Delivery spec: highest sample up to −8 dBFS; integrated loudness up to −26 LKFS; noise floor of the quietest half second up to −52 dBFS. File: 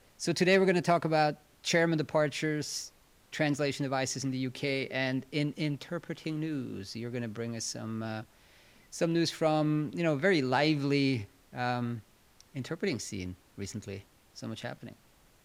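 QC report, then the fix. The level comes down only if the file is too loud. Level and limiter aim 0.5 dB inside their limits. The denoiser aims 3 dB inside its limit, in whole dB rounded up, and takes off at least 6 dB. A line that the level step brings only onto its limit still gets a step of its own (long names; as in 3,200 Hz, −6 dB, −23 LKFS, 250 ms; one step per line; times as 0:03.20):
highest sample −12.0 dBFS: in spec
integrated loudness −31.0 LKFS: in spec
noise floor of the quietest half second −62 dBFS: in spec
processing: no processing needed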